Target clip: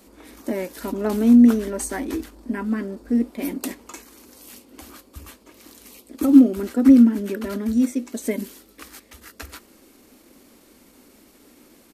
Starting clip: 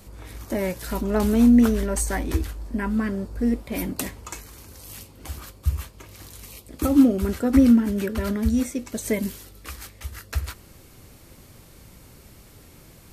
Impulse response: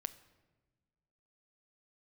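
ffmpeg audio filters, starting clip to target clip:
-af "atempo=1.1,lowshelf=f=180:t=q:w=3:g=-12,volume=-2.5dB"

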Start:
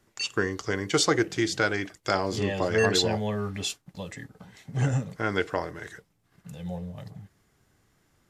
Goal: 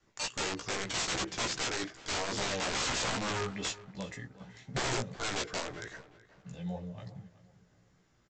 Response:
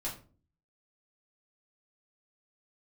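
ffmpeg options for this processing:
-filter_complex "[0:a]adynamicequalizer=threshold=0.00794:dfrequency=180:dqfactor=1.1:tfrequency=180:tqfactor=1.1:attack=5:release=100:ratio=0.375:range=1.5:mode=cutabove:tftype=bell,aresample=16000,aeval=exprs='(mod(16.8*val(0)+1,2)-1)/16.8':c=same,aresample=44100,flanger=delay=15:depth=2.1:speed=2.5,asplit=2[a][b];[b]adelay=375,lowpass=f=2.9k:p=1,volume=-17dB,asplit=2[c][d];[d]adelay=375,lowpass=f=2.9k:p=1,volume=0.35,asplit=2[e][f];[f]adelay=375,lowpass=f=2.9k:p=1,volume=0.35[g];[a][c][e][g]amix=inputs=4:normalize=0"

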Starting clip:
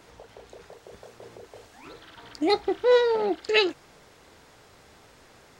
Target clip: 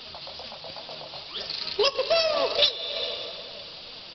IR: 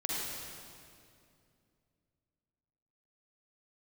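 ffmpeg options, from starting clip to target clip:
-filter_complex "[0:a]asplit=2[a][b];[1:a]atrim=start_sample=2205,asetrate=32634,aresample=44100,lowpass=2.1k[c];[b][c]afir=irnorm=-1:irlink=0,volume=-15.5dB[d];[a][d]amix=inputs=2:normalize=0,flanger=delay=5.1:depth=3.4:regen=52:speed=1.7:shape=triangular,aexciter=amount=13.5:drive=2.4:freq=2.2k,aresample=8000,acrusher=bits=3:mode=log:mix=0:aa=0.000001,aresample=44100,asetrate=59535,aresample=44100,acompressor=threshold=-26dB:ratio=8,volume=6.5dB"

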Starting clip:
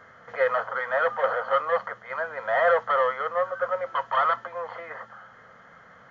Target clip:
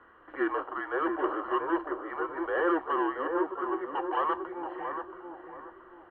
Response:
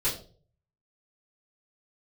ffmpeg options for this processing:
-filter_complex "[0:a]highpass=f=200:t=q:w=0.5412,highpass=f=200:t=q:w=1.307,lowpass=f=3.4k:t=q:w=0.5176,lowpass=f=3.4k:t=q:w=0.7071,lowpass=f=3.4k:t=q:w=1.932,afreqshift=-170,asplit=2[a][b];[b]adelay=679,lowpass=f=1k:p=1,volume=-4.5dB,asplit=2[c][d];[d]adelay=679,lowpass=f=1k:p=1,volume=0.4,asplit=2[e][f];[f]adelay=679,lowpass=f=1k:p=1,volume=0.4,asplit=2[g][h];[h]adelay=679,lowpass=f=1k:p=1,volume=0.4,asplit=2[i][j];[j]adelay=679,lowpass=f=1k:p=1,volume=0.4[k];[a][c][e][g][i][k]amix=inputs=6:normalize=0,volume=-6dB"

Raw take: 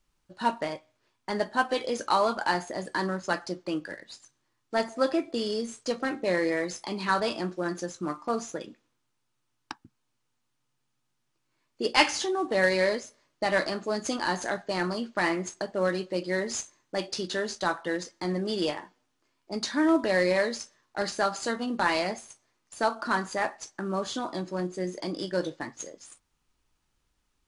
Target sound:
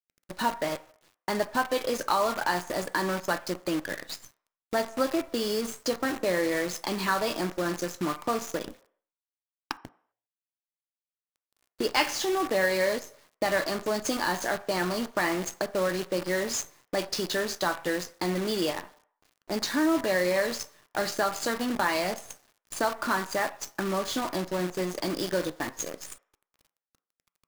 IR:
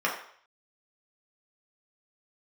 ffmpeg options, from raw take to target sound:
-filter_complex "[0:a]acompressor=threshold=-41dB:ratio=2,acrusher=bits=8:dc=4:mix=0:aa=0.000001,asplit=2[a][b];[1:a]atrim=start_sample=2205,lowpass=f=2.1k:p=1[c];[b][c]afir=irnorm=-1:irlink=0,volume=-22dB[d];[a][d]amix=inputs=2:normalize=0,volume=8.5dB"

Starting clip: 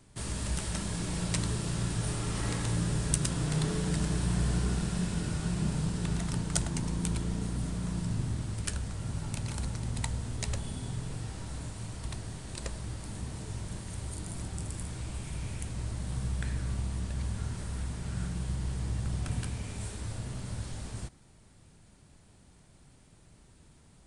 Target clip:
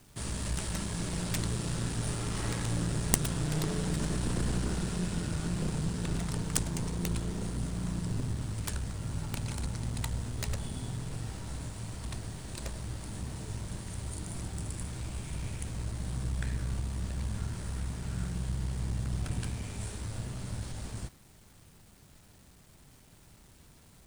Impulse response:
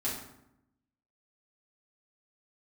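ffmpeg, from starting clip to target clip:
-af "acrusher=bits=9:mix=0:aa=0.000001,aeval=exprs='0.473*(cos(1*acos(clip(val(0)/0.473,-1,1)))-cos(1*PI/2))+0.0596*(cos(6*acos(clip(val(0)/0.473,-1,1)))-cos(6*PI/2))+0.119*(cos(7*acos(clip(val(0)/0.473,-1,1)))-cos(7*PI/2))':c=same,volume=2.5dB"

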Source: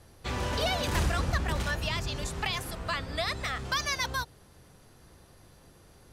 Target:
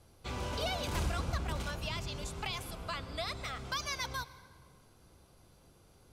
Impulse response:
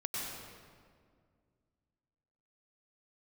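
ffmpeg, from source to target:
-filter_complex "[0:a]bandreject=f=1.8k:w=6.1,asplit=2[a][b];[1:a]atrim=start_sample=2205[c];[b][c]afir=irnorm=-1:irlink=0,volume=-17dB[d];[a][d]amix=inputs=2:normalize=0,volume=-7dB"

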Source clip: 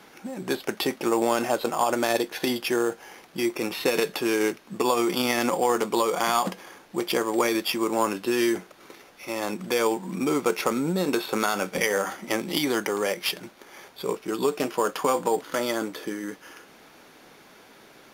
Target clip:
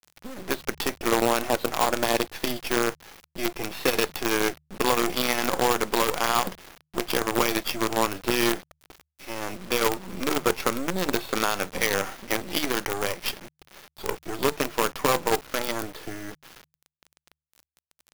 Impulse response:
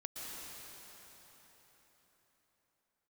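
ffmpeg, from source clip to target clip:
-af "acrusher=bits=4:dc=4:mix=0:aa=0.000001,bandreject=f=75.79:t=h:w=4,bandreject=f=151.58:t=h:w=4"

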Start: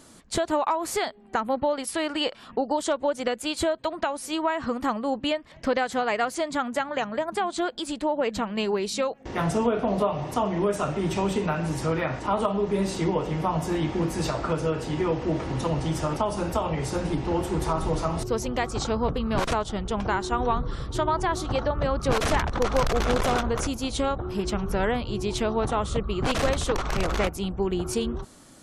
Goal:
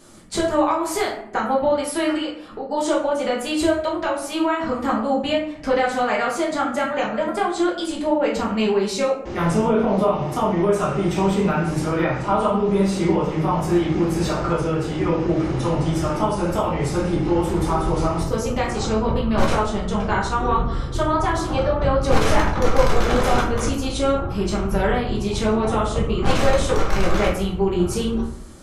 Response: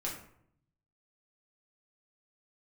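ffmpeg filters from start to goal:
-filter_complex "[0:a]asplit=3[a][b][c];[a]afade=t=out:st=2.16:d=0.02[d];[b]acompressor=threshold=-35dB:ratio=3,afade=t=in:st=2.16:d=0.02,afade=t=out:st=2.71:d=0.02[e];[c]afade=t=in:st=2.71:d=0.02[f];[d][e][f]amix=inputs=3:normalize=0[g];[1:a]atrim=start_sample=2205[h];[g][h]afir=irnorm=-1:irlink=0,volume=2.5dB"

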